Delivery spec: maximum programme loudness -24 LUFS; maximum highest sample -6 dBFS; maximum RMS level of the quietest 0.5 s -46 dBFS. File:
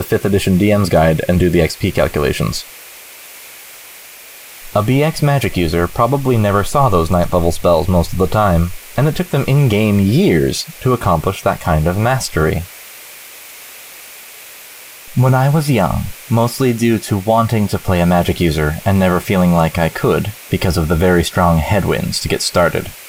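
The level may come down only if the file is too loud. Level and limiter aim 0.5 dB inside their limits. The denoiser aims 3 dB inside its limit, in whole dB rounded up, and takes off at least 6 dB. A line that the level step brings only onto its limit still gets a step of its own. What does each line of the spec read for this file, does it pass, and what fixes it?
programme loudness -14.5 LUFS: fail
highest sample -2.0 dBFS: fail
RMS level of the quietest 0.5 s -37 dBFS: fail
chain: trim -10 dB

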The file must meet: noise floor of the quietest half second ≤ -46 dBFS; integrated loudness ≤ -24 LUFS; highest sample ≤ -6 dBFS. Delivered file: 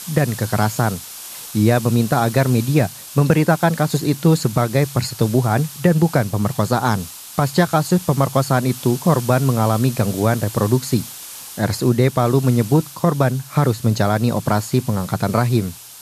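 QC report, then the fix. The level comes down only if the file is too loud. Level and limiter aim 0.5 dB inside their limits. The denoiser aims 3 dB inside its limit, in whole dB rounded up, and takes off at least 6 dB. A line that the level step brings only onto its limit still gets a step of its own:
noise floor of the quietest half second -35 dBFS: fail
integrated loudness -18.5 LUFS: fail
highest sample -2.0 dBFS: fail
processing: noise reduction 8 dB, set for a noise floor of -35 dBFS; trim -6 dB

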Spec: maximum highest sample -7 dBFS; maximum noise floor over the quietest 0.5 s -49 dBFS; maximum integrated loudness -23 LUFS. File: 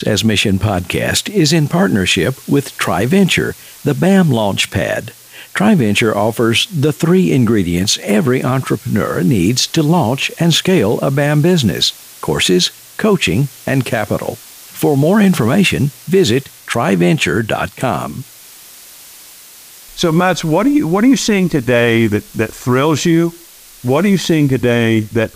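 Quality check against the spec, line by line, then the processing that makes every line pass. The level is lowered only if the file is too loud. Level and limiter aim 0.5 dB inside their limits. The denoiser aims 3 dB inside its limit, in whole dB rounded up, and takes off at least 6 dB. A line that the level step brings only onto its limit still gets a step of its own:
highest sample -2.0 dBFS: fail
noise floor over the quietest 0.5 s -39 dBFS: fail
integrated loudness -14.0 LUFS: fail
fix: noise reduction 6 dB, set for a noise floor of -39 dBFS; trim -9.5 dB

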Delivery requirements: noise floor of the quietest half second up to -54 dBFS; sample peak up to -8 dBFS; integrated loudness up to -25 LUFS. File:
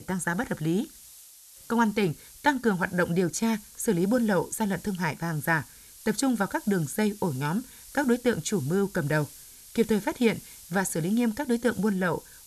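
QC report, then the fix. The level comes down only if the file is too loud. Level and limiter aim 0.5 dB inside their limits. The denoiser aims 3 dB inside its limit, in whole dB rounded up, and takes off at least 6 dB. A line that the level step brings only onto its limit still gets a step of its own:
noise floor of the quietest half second -50 dBFS: fail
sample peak -8.5 dBFS: pass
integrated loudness -27.5 LUFS: pass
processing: noise reduction 7 dB, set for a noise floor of -50 dBFS

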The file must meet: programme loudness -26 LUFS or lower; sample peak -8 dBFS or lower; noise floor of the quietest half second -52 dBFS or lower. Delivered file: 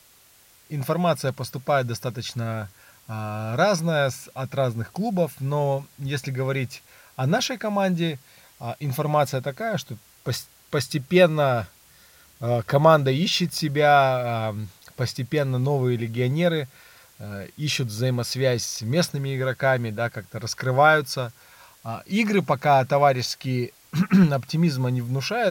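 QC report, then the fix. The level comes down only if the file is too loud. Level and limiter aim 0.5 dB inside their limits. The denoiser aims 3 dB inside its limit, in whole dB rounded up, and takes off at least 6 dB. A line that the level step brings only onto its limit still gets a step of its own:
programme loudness -23.5 LUFS: fail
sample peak -4.0 dBFS: fail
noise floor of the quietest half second -55 dBFS: pass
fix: trim -3 dB; peak limiter -8.5 dBFS

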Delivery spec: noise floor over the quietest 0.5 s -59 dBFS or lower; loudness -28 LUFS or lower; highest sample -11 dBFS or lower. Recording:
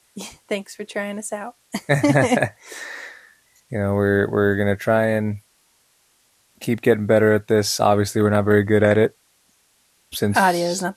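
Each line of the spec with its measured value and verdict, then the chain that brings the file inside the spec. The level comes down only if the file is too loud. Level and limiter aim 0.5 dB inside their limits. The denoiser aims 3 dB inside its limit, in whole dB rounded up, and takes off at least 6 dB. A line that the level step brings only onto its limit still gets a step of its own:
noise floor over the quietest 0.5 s -62 dBFS: pass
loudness -19.5 LUFS: fail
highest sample -3.5 dBFS: fail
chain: trim -9 dB

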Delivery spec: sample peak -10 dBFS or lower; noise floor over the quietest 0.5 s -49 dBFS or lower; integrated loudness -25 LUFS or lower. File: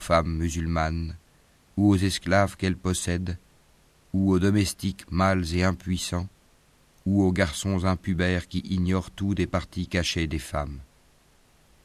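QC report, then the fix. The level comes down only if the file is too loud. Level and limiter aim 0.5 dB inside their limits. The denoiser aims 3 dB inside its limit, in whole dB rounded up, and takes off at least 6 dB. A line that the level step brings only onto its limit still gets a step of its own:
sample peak -7.5 dBFS: fail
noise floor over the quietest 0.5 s -60 dBFS: pass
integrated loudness -26.0 LUFS: pass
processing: peak limiter -10.5 dBFS

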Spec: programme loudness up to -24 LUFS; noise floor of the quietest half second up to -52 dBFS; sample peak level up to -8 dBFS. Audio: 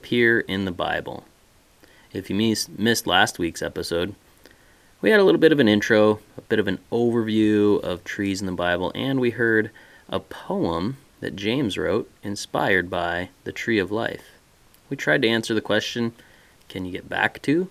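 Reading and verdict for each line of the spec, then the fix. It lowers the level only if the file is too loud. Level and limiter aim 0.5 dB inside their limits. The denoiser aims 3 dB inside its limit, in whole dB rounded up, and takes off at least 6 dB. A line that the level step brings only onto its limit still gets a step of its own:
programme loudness -22.5 LUFS: fail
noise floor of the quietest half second -57 dBFS: pass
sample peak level -2.0 dBFS: fail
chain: trim -2 dB; peak limiter -8.5 dBFS

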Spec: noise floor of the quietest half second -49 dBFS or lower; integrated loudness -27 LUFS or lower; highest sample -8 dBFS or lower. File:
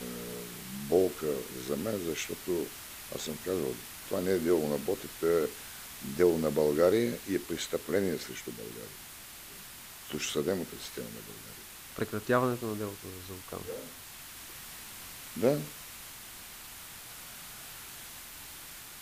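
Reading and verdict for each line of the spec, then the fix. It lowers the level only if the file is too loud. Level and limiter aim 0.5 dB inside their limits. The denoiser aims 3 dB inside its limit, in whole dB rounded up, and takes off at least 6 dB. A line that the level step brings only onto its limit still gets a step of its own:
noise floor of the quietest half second -48 dBFS: fail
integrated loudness -33.5 LUFS: pass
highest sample -13.0 dBFS: pass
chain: noise reduction 6 dB, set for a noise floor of -48 dBFS

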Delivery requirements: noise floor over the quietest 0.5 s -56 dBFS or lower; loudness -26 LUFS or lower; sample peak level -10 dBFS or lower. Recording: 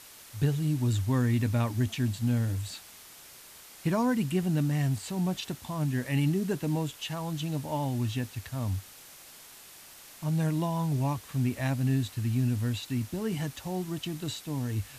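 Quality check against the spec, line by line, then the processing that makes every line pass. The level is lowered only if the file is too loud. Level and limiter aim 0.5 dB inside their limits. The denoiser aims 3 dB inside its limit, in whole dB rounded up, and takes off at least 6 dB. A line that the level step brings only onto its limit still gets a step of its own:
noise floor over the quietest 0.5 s -50 dBFS: fail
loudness -30.0 LUFS: pass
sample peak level -16.0 dBFS: pass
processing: noise reduction 9 dB, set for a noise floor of -50 dBFS

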